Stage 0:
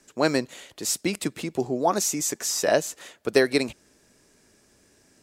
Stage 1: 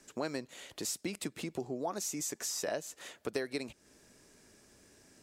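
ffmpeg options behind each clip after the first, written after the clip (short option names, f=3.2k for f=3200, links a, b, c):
-af "acompressor=threshold=-36dB:ratio=3,volume=-1.5dB"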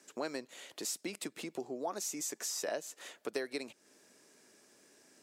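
-af "highpass=260,volume=-1dB"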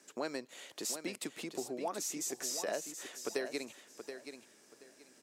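-af "aecho=1:1:727|1454|2181:0.355|0.0745|0.0156"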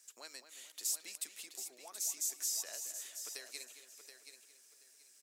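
-filter_complex "[0:a]aderivative,asplit=2[a][b];[b]adelay=220,lowpass=f=3k:p=1,volume=-9.5dB,asplit=2[c][d];[d]adelay=220,lowpass=f=3k:p=1,volume=0.5,asplit=2[e][f];[f]adelay=220,lowpass=f=3k:p=1,volume=0.5,asplit=2[g][h];[h]adelay=220,lowpass=f=3k:p=1,volume=0.5,asplit=2[i][j];[j]adelay=220,lowpass=f=3k:p=1,volume=0.5,asplit=2[k][l];[l]adelay=220,lowpass=f=3k:p=1,volume=0.5[m];[a][c][e][g][i][k][m]amix=inputs=7:normalize=0,volume=2.5dB"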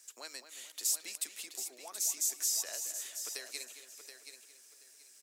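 -af "highpass=f=170:w=0.5412,highpass=f=170:w=1.3066,volume=4.5dB"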